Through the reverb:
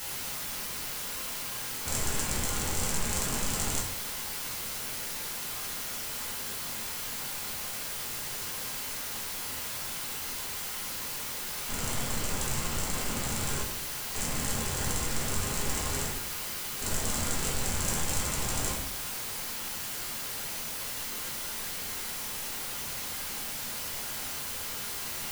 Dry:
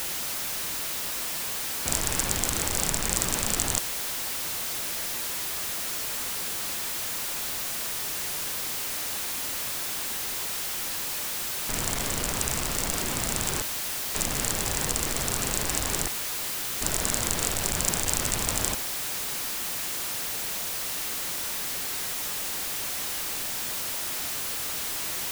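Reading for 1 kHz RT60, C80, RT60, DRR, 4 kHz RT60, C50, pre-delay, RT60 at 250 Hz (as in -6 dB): 0.60 s, 9.0 dB, 0.65 s, -5.0 dB, 0.45 s, 5.5 dB, 4 ms, 0.95 s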